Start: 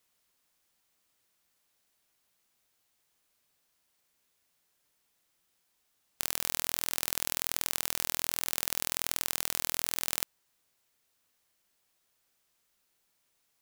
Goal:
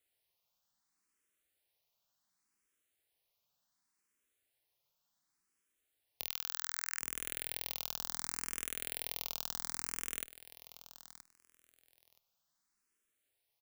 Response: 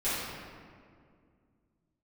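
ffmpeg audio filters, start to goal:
-filter_complex "[0:a]asplit=3[link_01][link_02][link_03];[link_01]afade=type=out:start_time=6.25:duration=0.02[link_04];[link_02]highpass=frequency=1600:width_type=q:width=2.7,afade=type=in:start_time=6.25:duration=0.02,afade=type=out:start_time=6.99:duration=0.02[link_05];[link_03]afade=type=in:start_time=6.99:duration=0.02[link_06];[link_04][link_05][link_06]amix=inputs=3:normalize=0,aecho=1:1:973|1946:0.188|0.032,asplit=2[link_07][link_08];[link_08]afreqshift=0.68[link_09];[link_07][link_09]amix=inputs=2:normalize=1,volume=-5dB"

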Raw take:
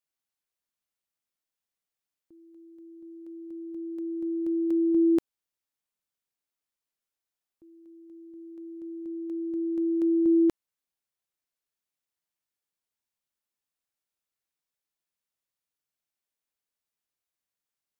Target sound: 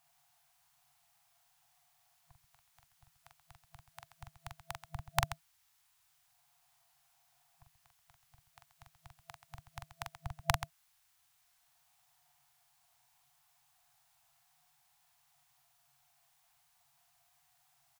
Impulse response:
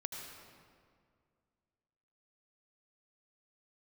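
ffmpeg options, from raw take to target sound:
-filter_complex "[0:a]aecho=1:1:43.73|131.2:0.631|0.251,acrossover=split=180|190|410[link_01][link_02][link_03][link_04];[link_03]acompressor=mode=upward:threshold=-59dB:ratio=2.5[link_05];[link_01][link_02][link_05][link_04]amix=inputs=4:normalize=0,afftfilt=real='re*(1-between(b*sr/4096,160,670))':imag='im*(1-between(b*sr/4096,160,670))':win_size=4096:overlap=0.75,volume=15.5dB"

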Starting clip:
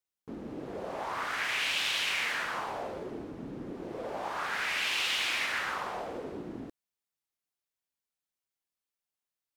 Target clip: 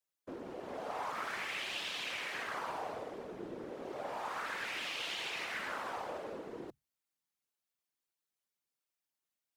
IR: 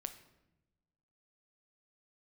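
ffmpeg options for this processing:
-filter_complex "[0:a]acrossover=split=680|6700[link_01][link_02][link_03];[link_01]acompressor=threshold=-42dB:ratio=4[link_04];[link_02]acompressor=threshold=-39dB:ratio=4[link_05];[link_03]acompressor=threshold=-60dB:ratio=4[link_06];[link_04][link_05][link_06]amix=inputs=3:normalize=0,afreqshift=98,afftfilt=real='hypot(re,im)*cos(2*PI*random(0))':imag='hypot(re,im)*sin(2*PI*random(1))':win_size=512:overlap=0.75,volume=5.5dB"

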